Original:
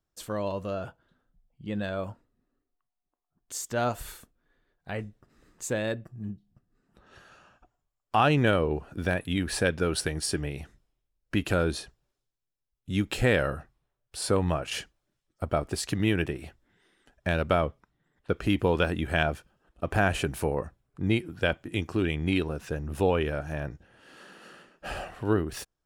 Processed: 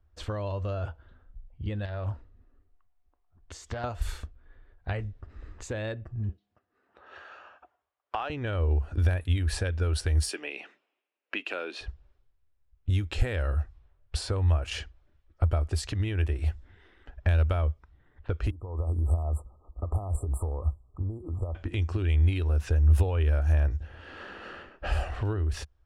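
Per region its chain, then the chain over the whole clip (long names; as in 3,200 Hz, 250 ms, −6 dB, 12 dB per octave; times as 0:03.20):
0:01.85–0:03.84: downward compressor 2.5 to 1, threshold −39 dBFS + highs frequency-modulated by the lows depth 0.35 ms
0:06.29–0:08.30: high-pass filter 460 Hz + de-essing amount 80%
0:10.28–0:11.81: Bessel high-pass filter 390 Hz, order 8 + parametric band 2,600 Hz +10 dB 0.47 octaves
0:18.50–0:21.55: low-shelf EQ 370 Hz −3.5 dB + downward compressor 10 to 1, threshold −39 dBFS + linear-phase brick-wall band-stop 1,300–7,300 Hz
whole clip: downward compressor 4 to 1, threshold −41 dBFS; low shelf with overshoot 110 Hz +11.5 dB, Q 3; low-pass that shuts in the quiet parts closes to 2,300 Hz, open at −29 dBFS; level +8 dB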